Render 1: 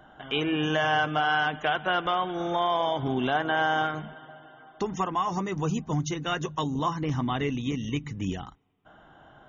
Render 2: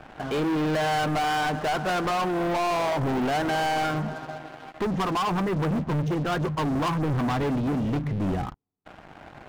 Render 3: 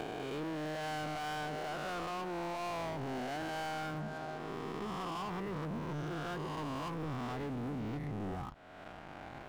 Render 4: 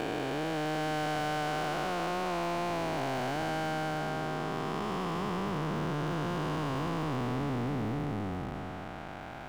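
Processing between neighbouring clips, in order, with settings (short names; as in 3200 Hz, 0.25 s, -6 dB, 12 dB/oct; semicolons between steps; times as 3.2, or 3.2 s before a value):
Bessel low-pass 1100 Hz, order 2; sample leveller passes 5; gain -5.5 dB
spectral swells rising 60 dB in 1.73 s; compressor 12:1, threshold -31 dBFS, peak gain reduction 12.5 dB; gain -6 dB
time blur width 0.895 s; gain +8 dB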